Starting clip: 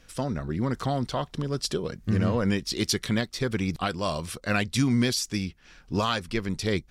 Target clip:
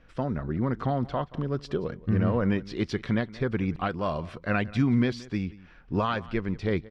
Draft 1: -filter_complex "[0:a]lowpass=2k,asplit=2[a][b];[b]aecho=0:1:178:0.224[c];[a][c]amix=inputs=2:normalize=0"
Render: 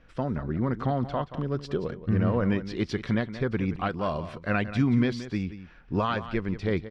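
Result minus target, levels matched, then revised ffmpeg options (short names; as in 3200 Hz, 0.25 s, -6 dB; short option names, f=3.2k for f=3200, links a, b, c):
echo-to-direct +7 dB
-filter_complex "[0:a]lowpass=2k,asplit=2[a][b];[b]aecho=0:1:178:0.1[c];[a][c]amix=inputs=2:normalize=0"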